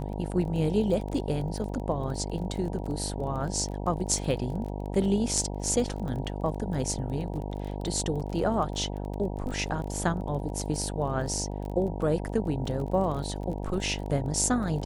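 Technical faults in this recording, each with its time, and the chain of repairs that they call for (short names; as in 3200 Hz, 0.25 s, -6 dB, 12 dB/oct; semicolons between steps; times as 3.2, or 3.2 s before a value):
buzz 50 Hz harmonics 19 -34 dBFS
crackle 22/s -35 dBFS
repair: de-click; de-hum 50 Hz, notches 19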